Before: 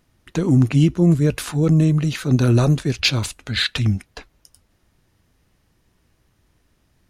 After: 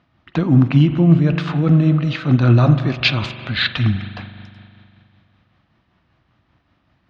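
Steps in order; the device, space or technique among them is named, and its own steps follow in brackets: combo amplifier with spring reverb and tremolo (spring tank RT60 2.5 s, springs 41 ms, chirp 50 ms, DRR 9.5 dB; tremolo 5.2 Hz, depth 33%; speaker cabinet 77–3900 Hz, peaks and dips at 430 Hz -9 dB, 710 Hz +4 dB, 1200 Hz +5 dB); gain +4 dB

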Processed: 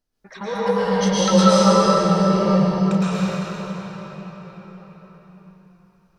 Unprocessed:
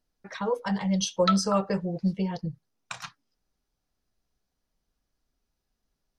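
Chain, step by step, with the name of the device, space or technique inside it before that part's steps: cathedral (reverb RT60 5.3 s, pre-delay 0.105 s, DRR -11.5 dB); gain -1.5 dB

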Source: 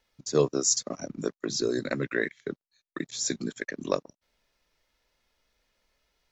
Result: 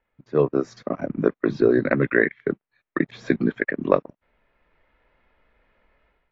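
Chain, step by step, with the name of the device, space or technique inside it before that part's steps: action camera in a waterproof case (LPF 2300 Hz 24 dB/oct; AGC gain up to 12 dB; AAC 48 kbps 24000 Hz)

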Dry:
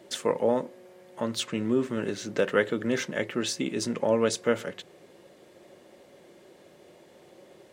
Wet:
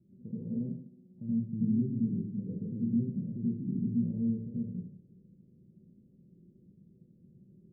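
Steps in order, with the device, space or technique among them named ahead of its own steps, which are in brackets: club heard from the street (limiter -18.5 dBFS, peak gain reduction 9 dB; LPF 190 Hz 24 dB/oct; reverb RT60 0.60 s, pre-delay 74 ms, DRR -6.5 dB)

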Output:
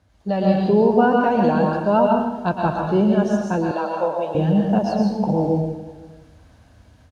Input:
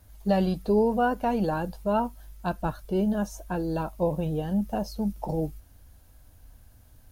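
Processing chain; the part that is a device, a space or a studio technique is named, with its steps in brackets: far laptop microphone (reverb RT60 0.90 s, pre-delay 0.107 s, DRR 0 dB; HPF 100 Hz 12 dB/oct; AGC gain up to 8 dB); 3.71–4.35 Chebyshev high-pass 640 Hz, order 2; air absorption 110 m; echo 0.511 s -22.5 dB

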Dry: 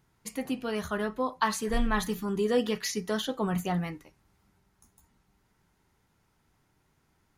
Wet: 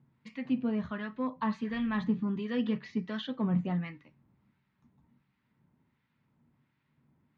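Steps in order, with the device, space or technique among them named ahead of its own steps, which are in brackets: guitar amplifier with harmonic tremolo (harmonic tremolo 1.4 Hz, depth 70%, crossover 1100 Hz; soft clip -21.5 dBFS, distortion -21 dB; speaker cabinet 91–3400 Hz, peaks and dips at 140 Hz +9 dB, 240 Hz +10 dB, 410 Hz -6 dB, 760 Hz -7 dB, 1400 Hz -5 dB, 3100 Hz -3 dB)

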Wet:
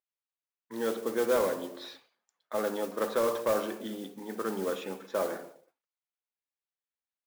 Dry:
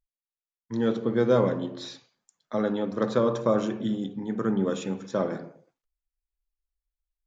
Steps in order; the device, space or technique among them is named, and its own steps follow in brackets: carbon microphone (BPF 430–3300 Hz; soft clip -19 dBFS, distortion -16 dB; modulation noise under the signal 16 dB)

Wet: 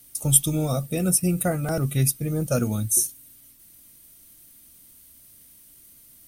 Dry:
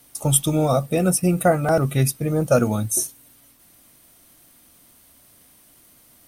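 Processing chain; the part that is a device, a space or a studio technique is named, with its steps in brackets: smiley-face EQ (low shelf 84 Hz +6 dB; bell 840 Hz -8 dB 1.8 oct; high shelf 7000 Hz +8 dB); gain -3.5 dB

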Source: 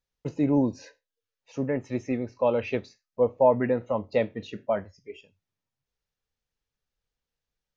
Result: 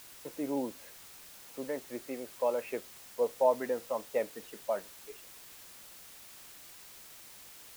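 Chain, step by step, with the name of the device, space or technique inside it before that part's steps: wax cylinder (BPF 390–2100 Hz; wow and flutter; white noise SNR 15 dB); gain -5.5 dB

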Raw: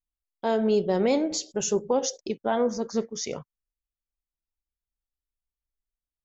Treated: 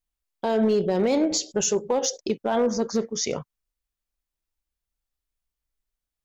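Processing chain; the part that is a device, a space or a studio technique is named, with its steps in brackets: 1.61–2.11 low shelf 300 Hz -7 dB; limiter into clipper (limiter -19 dBFS, peak gain reduction 6 dB; hard clip -20.5 dBFS, distortion -27 dB); gain +5.5 dB

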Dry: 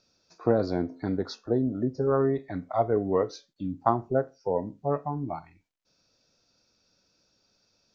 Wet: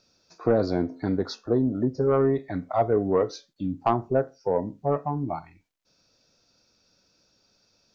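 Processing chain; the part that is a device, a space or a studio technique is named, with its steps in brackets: saturation between pre-emphasis and de-emphasis (high shelf 2000 Hz +9 dB; soft clip -13.5 dBFS, distortion -17 dB; high shelf 2000 Hz -9 dB); gain +3.5 dB

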